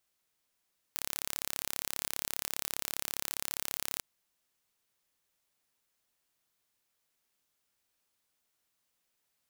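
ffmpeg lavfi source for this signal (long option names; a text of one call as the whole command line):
ffmpeg -f lavfi -i "aevalsrc='0.447*eq(mod(n,1264),0)':duration=3.06:sample_rate=44100" out.wav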